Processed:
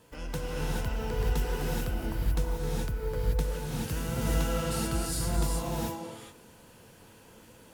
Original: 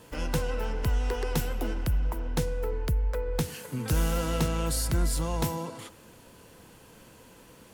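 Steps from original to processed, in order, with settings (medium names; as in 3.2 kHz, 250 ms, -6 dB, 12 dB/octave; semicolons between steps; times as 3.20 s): gated-style reverb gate 460 ms rising, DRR -5 dB; trim -7.5 dB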